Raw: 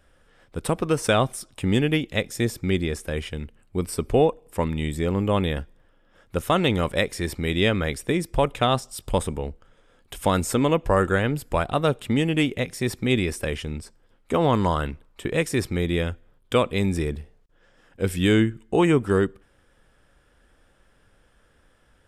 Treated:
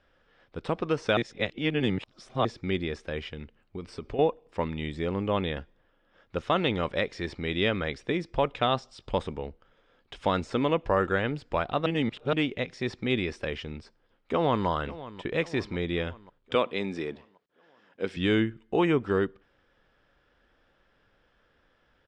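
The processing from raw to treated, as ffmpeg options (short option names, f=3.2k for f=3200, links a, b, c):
-filter_complex "[0:a]asettb=1/sr,asplit=3[a][b][c];[a]atrim=end=3.254[d];[b]atrim=start=3.25:end=4.19,asetpts=PTS-STARTPTS,afade=t=in:d=0.004:c=qsin,afade=t=out:st=0.936:d=0.004:c=qsin,acompressor=threshold=-25dB:ratio=6:attack=3.2:release=140:knee=1:detection=peak[e];[c]atrim=start=4.186[f];[d][e]acrossfade=d=0.004:c1=hsin:c2=qsin[g];[g][f]acrossfade=d=0.004:c1=qsin:c2=hsin,asplit=2[h][i];[i]afade=t=in:st=13.79:d=0.01,afade=t=out:st=14.67:d=0.01,aecho=0:1:540|1080|1620|2160|2700|3240:0.158489|0.0950936|0.0570562|0.0342337|0.0205402|0.0123241[j];[h][j]amix=inputs=2:normalize=0,asettb=1/sr,asplit=3[k][l][m];[k]atrim=end=16.554[n];[l]atrim=start=16.55:end=18.17,asetpts=PTS-STARTPTS,afade=t=in:d=0.004:c=qsin,afade=t=out:st=1.616:d=0.004:c=qsin,highpass=210[o];[m]atrim=start=18.166[p];[n][o]acrossfade=d=0.004:c1=hsin:c2=qsin[q];[q][p]acrossfade=d=0.004:c1=qsin:c2=hsin,asplit=5[r][s][t][u][v];[r]atrim=end=1.172[w];[s]atrim=start=1.168:end=2.452,asetpts=PTS-STARTPTS,areverse[x];[t]atrim=start=2.448:end=11.862[y];[u]atrim=start=11.858:end=12.332,asetpts=PTS-STARTPTS,areverse[z];[v]atrim=start=12.328[aa];[w][x]acrossfade=d=0.004:c1=hsin:c2=hsin[ab];[ab][y]acrossfade=d=0.004:c1=hsin:c2=hsin[ac];[ac][z]acrossfade=d=0.004:c1=hsin:c2=hsin[ad];[ad][aa]acrossfade=d=0.004:c1=hsin:c2=hsin,deesser=0.55,lowpass=f=5k:w=0.5412,lowpass=f=5k:w=1.3066,lowshelf=f=170:g=-7.5,volume=-3.5dB"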